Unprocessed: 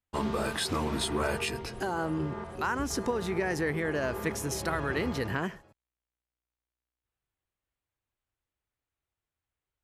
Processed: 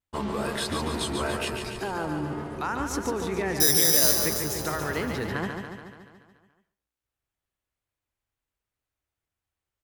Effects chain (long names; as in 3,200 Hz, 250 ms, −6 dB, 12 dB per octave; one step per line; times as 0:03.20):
tape wow and flutter 85 cents
far-end echo of a speakerphone 130 ms, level −16 dB
0:03.60–0:04.16: bad sample-rate conversion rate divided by 8×, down none, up zero stuff
repeating echo 143 ms, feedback 60%, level −6 dB